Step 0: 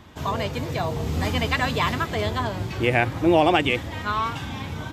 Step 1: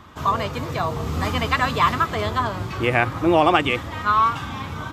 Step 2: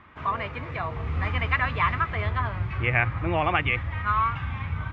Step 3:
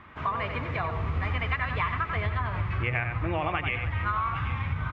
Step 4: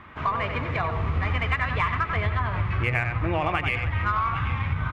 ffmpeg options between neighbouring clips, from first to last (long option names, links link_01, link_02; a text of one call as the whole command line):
ffmpeg -i in.wav -af "equalizer=frequency=1200:width=2.9:gain=11" out.wav
ffmpeg -i in.wav -af "asubboost=boost=10:cutoff=99,lowpass=frequency=2200:width_type=q:width=2.9,volume=-8.5dB" out.wav
ffmpeg -i in.wav -filter_complex "[0:a]asplit=2[link_01][link_02];[link_02]aecho=0:1:91|289|787:0.376|0.106|0.133[link_03];[link_01][link_03]amix=inputs=2:normalize=0,acompressor=threshold=-27dB:ratio=6,volume=2dB" out.wav
ffmpeg -i in.wav -af "aeval=exprs='0.2*(cos(1*acos(clip(val(0)/0.2,-1,1)))-cos(1*PI/2))+0.00316*(cos(8*acos(clip(val(0)/0.2,-1,1)))-cos(8*PI/2))':channel_layout=same,volume=3.5dB" out.wav